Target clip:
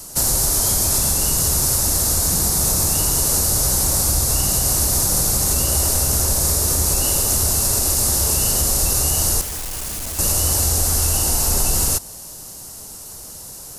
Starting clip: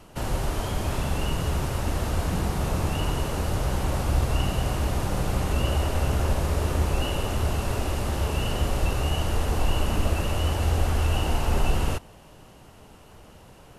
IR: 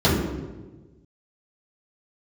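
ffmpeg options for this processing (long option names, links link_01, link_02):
-filter_complex "[0:a]asplit=2[link_01][link_02];[link_02]alimiter=limit=-21.5dB:level=0:latency=1:release=197,volume=2dB[link_03];[link_01][link_03]amix=inputs=2:normalize=0,aexciter=amount=8.2:drive=8:freq=4400,asettb=1/sr,asplit=3[link_04][link_05][link_06];[link_04]atrim=end=9.414[link_07];[link_05]atrim=start=9.41:end=10.19,asetpts=PTS-STARTPTS,afade=type=in:duration=0.004:curve=qsin,afade=type=out:start_time=0.776:duration=0.004:curve=qsin,asoftclip=type=hard:threshold=-23dB[link_08];[link_06]atrim=start=10.186[link_09];[link_07][link_08]acrossfade=duration=0.004:curve1=hsin:curve2=qsin[link_10];[link_10][link_09]acrossfade=duration=0.004:curve1=qsin:curve2=hsin,volume=-3dB"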